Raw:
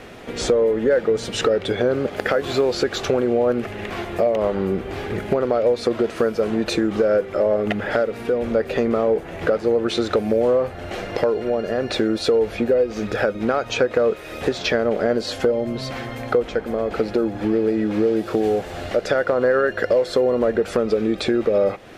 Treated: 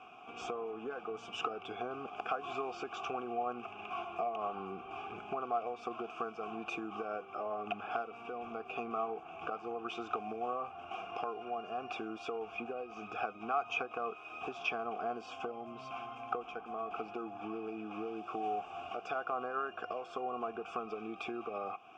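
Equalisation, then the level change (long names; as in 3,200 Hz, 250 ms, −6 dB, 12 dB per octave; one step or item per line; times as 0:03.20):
formant filter a
notch filter 1,000 Hz, Q 18
phaser with its sweep stopped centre 2,800 Hz, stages 8
+3.0 dB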